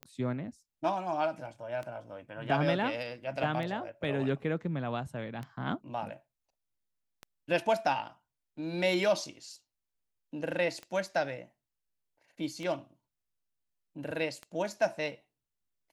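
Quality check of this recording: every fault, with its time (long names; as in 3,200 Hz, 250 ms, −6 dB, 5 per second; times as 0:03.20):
scratch tick 33 1/3 rpm −26 dBFS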